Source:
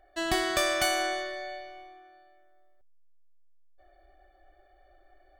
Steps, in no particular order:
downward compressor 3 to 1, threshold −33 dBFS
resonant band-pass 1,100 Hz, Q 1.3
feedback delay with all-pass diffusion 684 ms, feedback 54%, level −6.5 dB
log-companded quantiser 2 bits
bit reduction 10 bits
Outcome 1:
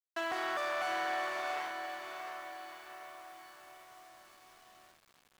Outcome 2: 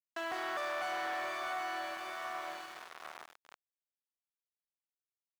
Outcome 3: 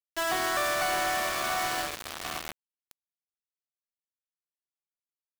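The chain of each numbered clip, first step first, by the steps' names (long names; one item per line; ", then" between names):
log-companded quantiser, then resonant band-pass, then downward compressor, then feedback delay with all-pass diffusion, then bit reduction
feedback delay with all-pass diffusion, then log-companded quantiser, then downward compressor, then resonant band-pass, then bit reduction
resonant band-pass, then bit reduction, then feedback delay with all-pass diffusion, then downward compressor, then log-companded quantiser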